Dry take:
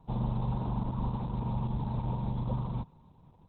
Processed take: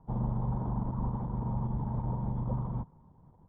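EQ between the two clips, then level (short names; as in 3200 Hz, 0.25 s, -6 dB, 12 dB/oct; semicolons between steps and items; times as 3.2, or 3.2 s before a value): polynomial smoothing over 41 samples; air absorption 250 m; 0.0 dB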